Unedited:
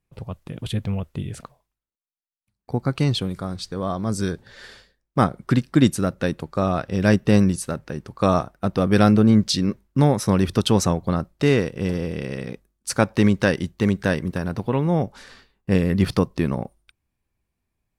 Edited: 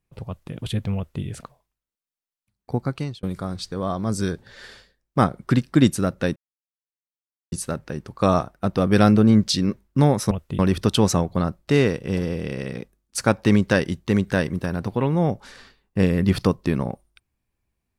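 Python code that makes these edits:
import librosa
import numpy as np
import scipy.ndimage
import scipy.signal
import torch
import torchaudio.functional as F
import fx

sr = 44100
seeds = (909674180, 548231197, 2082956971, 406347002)

y = fx.edit(x, sr, fx.duplicate(start_s=0.96, length_s=0.28, to_s=10.31),
    fx.fade_out_span(start_s=2.75, length_s=0.48),
    fx.silence(start_s=6.36, length_s=1.16), tone=tone)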